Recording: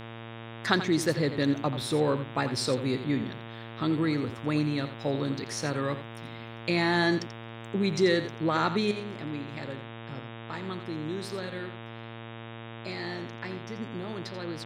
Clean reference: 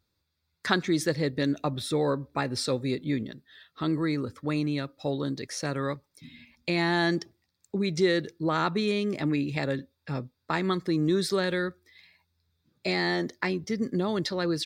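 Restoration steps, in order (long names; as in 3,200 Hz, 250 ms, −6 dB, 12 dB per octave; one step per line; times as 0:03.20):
hum removal 114.5 Hz, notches 33
echo removal 86 ms −11.5 dB
level correction +10 dB, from 0:08.91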